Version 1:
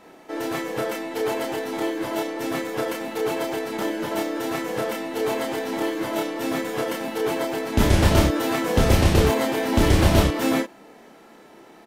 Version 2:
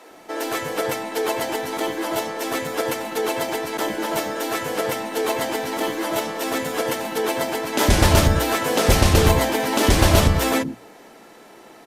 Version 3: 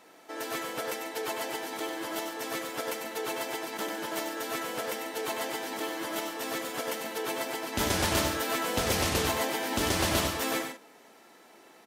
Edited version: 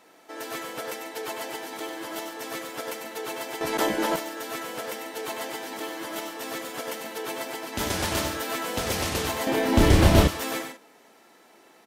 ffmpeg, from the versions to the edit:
-filter_complex "[2:a]asplit=3[a][b][c];[a]atrim=end=3.612[d];[1:a]atrim=start=3.608:end=4.162[e];[b]atrim=start=4.158:end=9.472[f];[0:a]atrim=start=9.468:end=10.282[g];[c]atrim=start=10.278[h];[d][e]acrossfade=d=0.004:c1=hsin:c2=hsin[i];[i][f]acrossfade=d=0.004:c1=hsin:c2=hsin[j];[j][g]acrossfade=d=0.004:c1=hsin:c2=hsin[k];[k][h]acrossfade=d=0.004:c1=hsin:c2=hsin"

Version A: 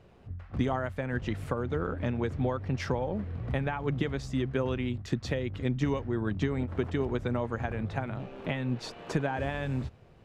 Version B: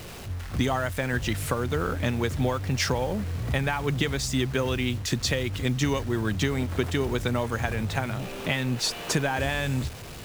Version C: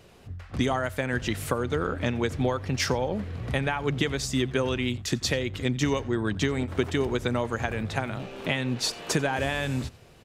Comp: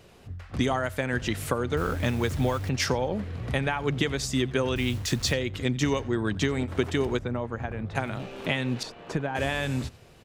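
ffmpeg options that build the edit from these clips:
-filter_complex "[1:a]asplit=2[a][b];[0:a]asplit=2[c][d];[2:a]asplit=5[e][f][g][h][i];[e]atrim=end=1.772[j];[a]atrim=start=1.768:end=2.692[k];[f]atrim=start=2.688:end=4.762[l];[b]atrim=start=4.758:end=5.332[m];[g]atrim=start=5.328:end=7.192[n];[c]atrim=start=7.188:end=7.952[o];[h]atrim=start=7.948:end=8.832[p];[d]atrim=start=8.828:end=9.352[q];[i]atrim=start=9.348[r];[j][k]acrossfade=d=0.004:c1=hsin:c2=hsin[s];[s][l]acrossfade=d=0.004:c1=hsin:c2=hsin[t];[t][m]acrossfade=d=0.004:c1=hsin:c2=hsin[u];[u][n]acrossfade=d=0.004:c1=hsin:c2=hsin[v];[v][o]acrossfade=d=0.004:c1=hsin:c2=hsin[w];[w][p]acrossfade=d=0.004:c1=hsin:c2=hsin[x];[x][q]acrossfade=d=0.004:c1=hsin:c2=hsin[y];[y][r]acrossfade=d=0.004:c1=hsin:c2=hsin"

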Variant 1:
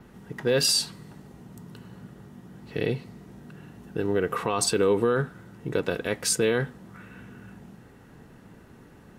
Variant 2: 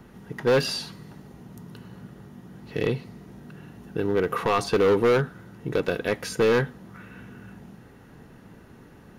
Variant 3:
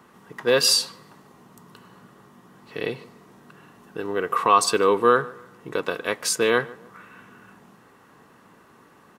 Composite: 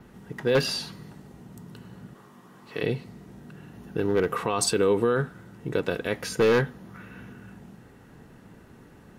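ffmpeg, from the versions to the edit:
-filter_complex "[1:a]asplit=3[a][b][c];[0:a]asplit=5[d][e][f][g][h];[d]atrim=end=0.552[i];[a]atrim=start=0.548:end=1.102[j];[e]atrim=start=1.098:end=2.152[k];[2:a]atrim=start=2.148:end=2.832[l];[f]atrim=start=2.828:end=3.732[m];[b]atrim=start=3.728:end=4.312[n];[g]atrim=start=4.308:end=6.142[o];[c]atrim=start=6.138:end=7.332[p];[h]atrim=start=7.328[q];[i][j]acrossfade=d=0.004:c1=hsin:c2=hsin[r];[r][k]acrossfade=d=0.004:c1=hsin:c2=hsin[s];[s][l]acrossfade=d=0.004:c1=hsin:c2=hsin[t];[t][m]acrossfade=d=0.004:c1=hsin:c2=hsin[u];[u][n]acrossfade=d=0.004:c1=hsin:c2=hsin[v];[v][o]acrossfade=d=0.004:c1=hsin:c2=hsin[w];[w][p]acrossfade=d=0.004:c1=hsin:c2=hsin[x];[x][q]acrossfade=d=0.004:c1=hsin:c2=hsin"

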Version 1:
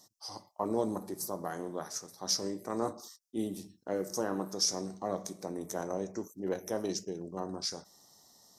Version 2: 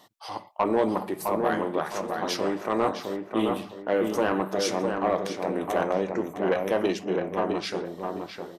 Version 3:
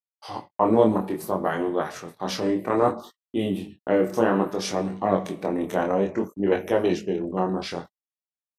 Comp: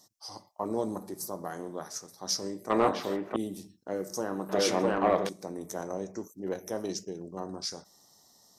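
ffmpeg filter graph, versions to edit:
-filter_complex "[1:a]asplit=2[a][b];[0:a]asplit=3[c][d][e];[c]atrim=end=2.702[f];[a]atrim=start=2.698:end=3.362[g];[d]atrim=start=3.358:end=4.492[h];[b]atrim=start=4.488:end=5.292[i];[e]atrim=start=5.288[j];[f][g]acrossfade=d=0.004:c1=hsin:c2=hsin[k];[k][h]acrossfade=d=0.004:c1=hsin:c2=hsin[l];[l][i]acrossfade=d=0.004:c1=hsin:c2=hsin[m];[m][j]acrossfade=d=0.004:c1=hsin:c2=hsin"

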